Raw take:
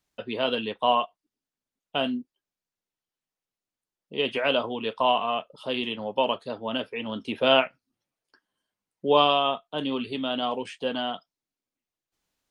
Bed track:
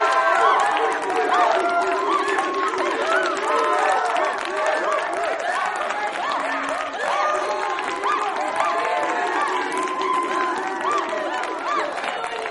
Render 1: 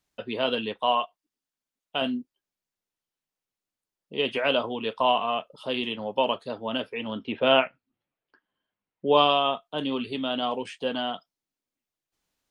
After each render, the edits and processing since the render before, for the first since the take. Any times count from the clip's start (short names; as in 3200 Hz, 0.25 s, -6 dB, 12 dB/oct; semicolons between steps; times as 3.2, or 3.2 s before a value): 0.8–2.02 low shelf 480 Hz -6 dB; 7.13–9.13 LPF 3400 Hz 24 dB/oct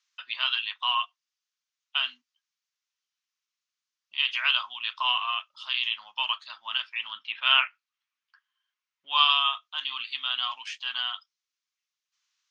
elliptic band-pass 1100–6300 Hz, stop band 40 dB; high shelf 2400 Hz +8.5 dB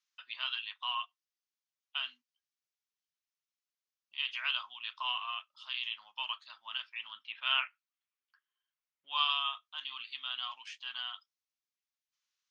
gain -9.5 dB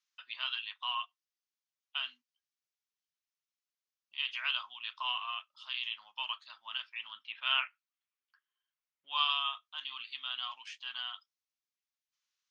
nothing audible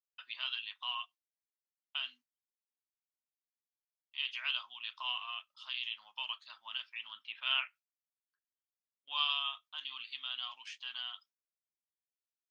gate with hold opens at -56 dBFS; dynamic EQ 1200 Hz, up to -6 dB, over -49 dBFS, Q 0.79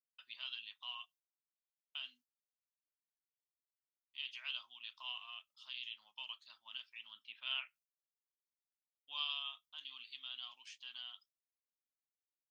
expander -58 dBFS; bell 1300 Hz -12 dB 2.9 oct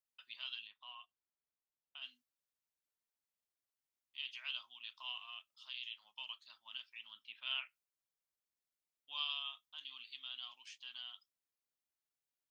0.67–2.02 LPF 1300 Hz 6 dB/oct; 5.54–6.03 HPF 200 Hz -> 410 Hz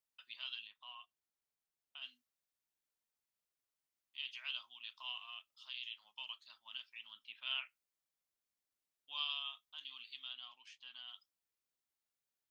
10.33–11.08 high shelf 4000 Hz -10 dB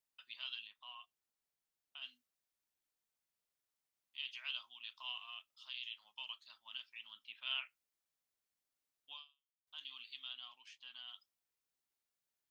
9.12–9.67 fade out exponential